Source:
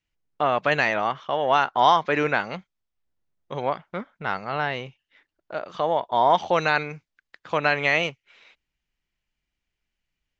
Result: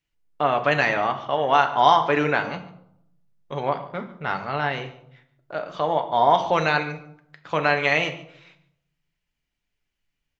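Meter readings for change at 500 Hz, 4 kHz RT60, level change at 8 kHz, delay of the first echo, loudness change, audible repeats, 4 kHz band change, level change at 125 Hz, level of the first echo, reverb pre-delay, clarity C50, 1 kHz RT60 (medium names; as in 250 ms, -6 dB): +1.0 dB, 0.45 s, no reading, 144 ms, +1.0 dB, 1, +1.0 dB, +3.0 dB, -19.5 dB, 7 ms, 12.0 dB, 0.70 s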